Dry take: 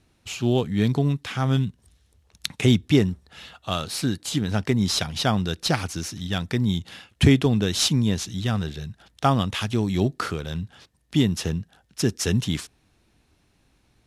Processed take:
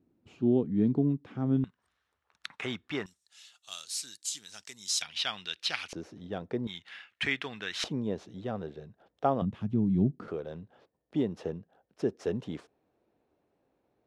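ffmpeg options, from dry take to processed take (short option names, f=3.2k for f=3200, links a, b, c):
-af "asetnsamples=n=441:p=0,asendcmd='1.64 bandpass f 1300;3.06 bandpass f 7200;5.02 bandpass f 2800;5.93 bandpass f 490;6.67 bandpass f 1900;7.84 bandpass f 510;9.42 bandpass f 190;10.28 bandpass f 520',bandpass=f=280:t=q:w=1.8:csg=0"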